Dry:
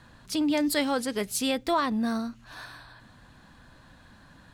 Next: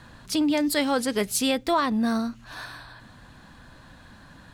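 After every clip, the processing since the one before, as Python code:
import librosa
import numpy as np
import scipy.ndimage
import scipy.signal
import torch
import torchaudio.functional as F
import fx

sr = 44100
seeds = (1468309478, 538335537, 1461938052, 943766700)

y = fx.rider(x, sr, range_db=3, speed_s=0.5)
y = y * librosa.db_to_amplitude(3.5)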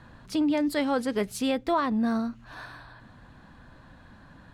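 y = fx.high_shelf(x, sr, hz=3200.0, db=-12.0)
y = y * librosa.db_to_amplitude(-1.5)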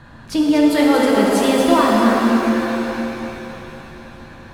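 y = x + 10.0 ** (-6.5 / 20.0) * np.pad(x, (int(236 * sr / 1000.0), 0))[:len(x)]
y = fx.rev_shimmer(y, sr, seeds[0], rt60_s=3.2, semitones=7, shimmer_db=-8, drr_db=-2.0)
y = y * librosa.db_to_amplitude(7.0)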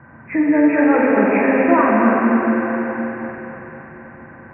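y = fx.freq_compress(x, sr, knee_hz=1500.0, ratio=4.0)
y = fx.bandpass_edges(y, sr, low_hz=110.0, high_hz=2300.0)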